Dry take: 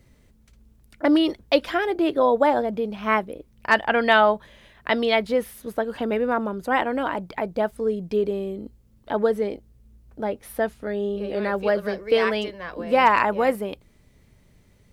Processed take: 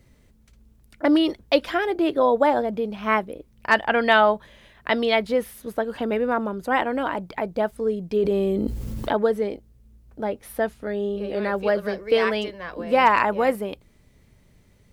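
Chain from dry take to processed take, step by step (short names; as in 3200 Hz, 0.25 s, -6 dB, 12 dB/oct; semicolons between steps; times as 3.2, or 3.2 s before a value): 8.16–9.17 fast leveller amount 70%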